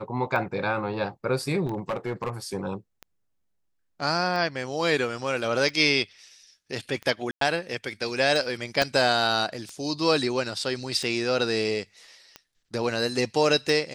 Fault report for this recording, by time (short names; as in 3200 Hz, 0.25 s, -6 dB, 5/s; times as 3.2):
tick 45 rpm -22 dBFS
1.65–2.3 clipped -24 dBFS
7.31–7.41 gap 0.103 s
8.82 pop